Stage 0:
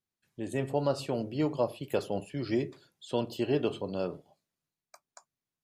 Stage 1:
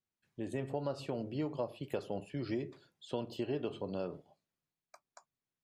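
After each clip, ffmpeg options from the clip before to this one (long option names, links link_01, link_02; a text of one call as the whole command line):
ffmpeg -i in.wav -af "lowpass=frequency=4000:poles=1,acompressor=threshold=-32dB:ratio=3,volume=-2dB" out.wav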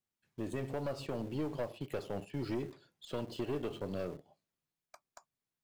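ffmpeg -i in.wav -filter_complex "[0:a]asplit=2[link_01][link_02];[link_02]acrusher=bits=7:mix=0:aa=0.000001,volume=-11.5dB[link_03];[link_01][link_03]amix=inputs=2:normalize=0,aeval=exprs='(tanh(35.5*val(0)+0.4)-tanh(0.4))/35.5':channel_layout=same,volume=1dB" out.wav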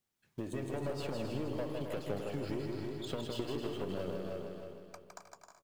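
ffmpeg -i in.wav -filter_complex "[0:a]asplit=2[link_01][link_02];[link_02]aecho=0:1:312|624|936|1248:0.282|0.104|0.0386|0.0143[link_03];[link_01][link_03]amix=inputs=2:normalize=0,acompressor=threshold=-41dB:ratio=6,asplit=2[link_04][link_05];[link_05]aecho=0:1:160|264|331.6|375.5|404.1:0.631|0.398|0.251|0.158|0.1[link_06];[link_04][link_06]amix=inputs=2:normalize=0,volume=5dB" out.wav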